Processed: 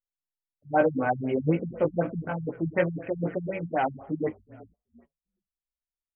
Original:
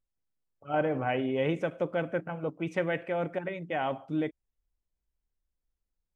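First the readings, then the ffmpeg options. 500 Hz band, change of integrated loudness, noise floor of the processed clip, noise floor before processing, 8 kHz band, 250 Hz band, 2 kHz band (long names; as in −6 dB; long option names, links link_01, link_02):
+3.0 dB, +3.5 dB, below −85 dBFS, −85 dBFS, can't be measured, +4.0 dB, +1.5 dB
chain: -filter_complex "[0:a]asplit=2[link_01][link_02];[link_02]asplit=3[link_03][link_04][link_05];[link_03]adelay=383,afreqshift=-38,volume=-21.5dB[link_06];[link_04]adelay=766,afreqshift=-76,volume=-28.4dB[link_07];[link_05]adelay=1149,afreqshift=-114,volume=-35.4dB[link_08];[link_06][link_07][link_08]amix=inputs=3:normalize=0[link_09];[link_01][link_09]amix=inputs=2:normalize=0,agate=range=-23dB:threshold=-55dB:ratio=16:detection=peak,flanger=delay=16.5:depth=3.1:speed=2.4,afftfilt=real='re*lt(b*sr/1024,200*pow(3300/200,0.5+0.5*sin(2*PI*4*pts/sr)))':imag='im*lt(b*sr/1024,200*pow(3300/200,0.5+0.5*sin(2*PI*4*pts/sr)))':win_size=1024:overlap=0.75,volume=8.5dB"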